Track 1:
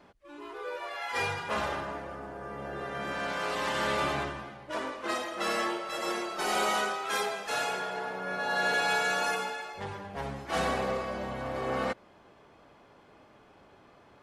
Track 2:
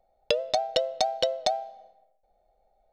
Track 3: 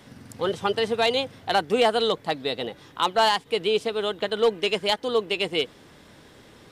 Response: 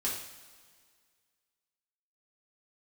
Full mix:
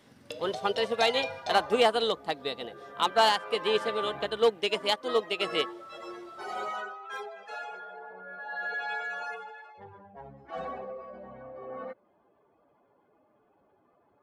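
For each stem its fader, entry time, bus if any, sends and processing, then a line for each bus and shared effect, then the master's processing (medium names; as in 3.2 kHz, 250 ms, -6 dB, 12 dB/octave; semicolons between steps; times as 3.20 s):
-1.0 dB, 0.00 s, no send, spectral contrast enhancement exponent 1.9
-11.5 dB, 0.00 s, send -6 dB, none
-1.5 dB, 0.00 s, no send, none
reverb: on, pre-delay 3 ms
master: bass shelf 150 Hz -8 dB; upward expansion 1.5:1, over -34 dBFS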